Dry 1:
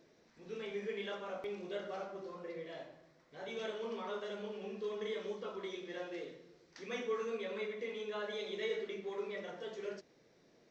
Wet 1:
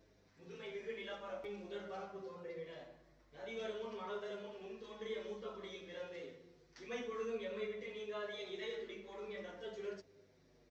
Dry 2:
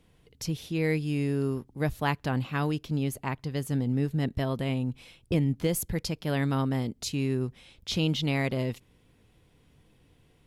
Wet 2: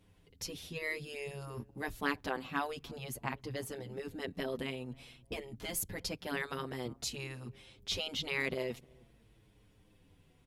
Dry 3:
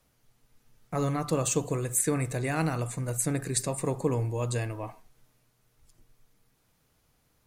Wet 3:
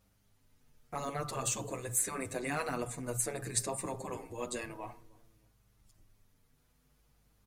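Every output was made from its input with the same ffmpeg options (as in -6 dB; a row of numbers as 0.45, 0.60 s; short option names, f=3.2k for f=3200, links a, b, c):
-filter_complex "[0:a]afftfilt=real='re*lt(hypot(re,im),0.224)':imag='im*lt(hypot(re,im),0.224)':win_size=1024:overlap=0.75,aeval=exprs='0.251*(cos(1*acos(clip(val(0)/0.251,-1,1)))-cos(1*PI/2))+0.00355*(cos(3*acos(clip(val(0)/0.251,-1,1)))-cos(3*PI/2))+0.00355*(cos(5*acos(clip(val(0)/0.251,-1,1)))-cos(5*PI/2))+0.002*(cos(6*acos(clip(val(0)/0.251,-1,1)))-cos(6*PI/2))+0.00398*(cos(7*acos(clip(val(0)/0.251,-1,1)))-cos(7*PI/2))':c=same,aeval=exprs='val(0)+0.000398*(sin(2*PI*50*n/s)+sin(2*PI*2*50*n/s)/2+sin(2*PI*3*50*n/s)/3+sin(2*PI*4*50*n/s)/4+sin(2*PI*5*50*n/s)/5)':c=same,asplit=2[a][b];[b]adelay=309,lowpass=f=830:p=1,volume=-22dB,asplit=2[c][d];[d]adelay=309,lowpass=f=830:p=1,volume=0.29[e];[a][c][e]amix=inputs=3:normalize=0,asplit=2[f][g];[g]adelay=7.2,afreqshift=-0.51[h];[f][h]amix=inputs=2:normalize=1"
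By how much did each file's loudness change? -4.0, -9.5, -6.5 LU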